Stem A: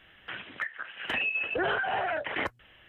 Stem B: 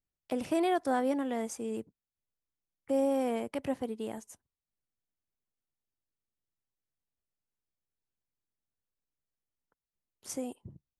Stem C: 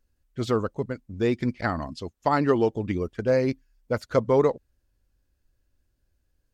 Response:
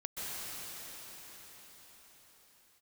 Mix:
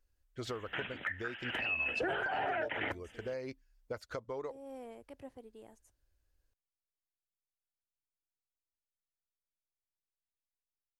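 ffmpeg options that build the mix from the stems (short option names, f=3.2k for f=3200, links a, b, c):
-filter_complex "[0:a]equalizer=f=4.2k:t=o:w=0.77:g=-4.5,bandreject=f=1.1k:w=5.9,adelay=450,volume=1.5dB[a];[1:a]lowshelf=f=370:g=10.5,adelay=1550,volume=-17dB[b];[2:a]volume=-4.5dB[c];[b][c]amix=inputs=2:normalize=0,equalizer=f=180:t=o:w=1.2:g=-13.5,acompressor=threshold=-37dB:ratio=8,volume=0dB[d];[a][d]amix=inputs=2:normalize=0,alimiter=level_in=2dB:limit=-24dB:level=0:latency=1:release=416,volume=-2dB"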